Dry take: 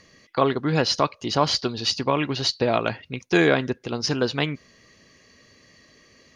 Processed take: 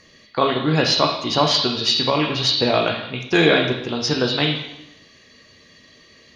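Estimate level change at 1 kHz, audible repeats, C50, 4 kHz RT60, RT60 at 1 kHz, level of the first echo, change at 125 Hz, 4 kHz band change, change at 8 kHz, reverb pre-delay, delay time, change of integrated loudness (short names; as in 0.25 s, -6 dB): +3.5 dB, none, 5.0 dB, 0.80 s, 0.85 s, none, +3.0 dB, +7.5 dB, +2.0 dB, 6 ms, none, +4.5 dB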